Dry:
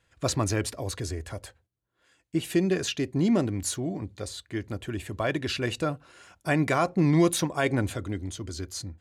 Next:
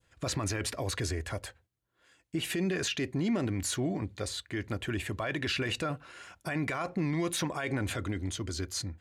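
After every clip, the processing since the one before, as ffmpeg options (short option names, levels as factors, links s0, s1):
-af "acompressor=threshold=0.0631:ratio=3,adynamicequalizer=threshold=0.00447:dfrequency=2000:dqfactor=0.76:tfrequency=2000:tqfactor=0.76:attack=5:release=100:ratio=0.375:range=3.5:mode=boostabove:tftype=bell,alimiter=limit=0.0708:level=0:latency=1:release=17"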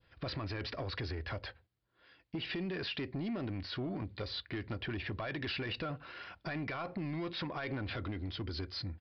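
-af "acompressor=threshold=0.02:ratio=6,aresample=11025,asoftclip=type=tanh:threshold=0.0224,aresample=44100,volume=1.19"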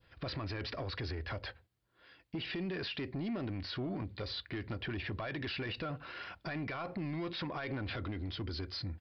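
-af "alimiter=level_in=3.55:limit=0.0631:level=0:latency=1:release=49,volume=0.282,volume=1.33"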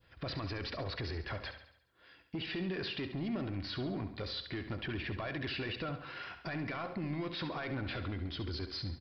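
-af "aecho=1:1:69|138|207|276|345|414:0.316|0.164|0.0855|0.0445|0.0231|0.012"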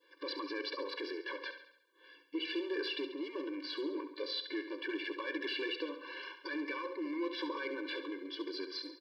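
-filter_complex "[0:a]asplit=2[s0][s1];[s1]volume=44.7,asoftclip=hard,volume=0.0224,volume=0.531[s2];[s0][s2]amix=inputs=2:normalize=0,afftfilt=real='re*eq(mod(floor(b*sr/1024/300),2),1)':imag='im*eq(mod(floor(b*sr/1024/300),2),1)':win_size=1024:overlap=0.75"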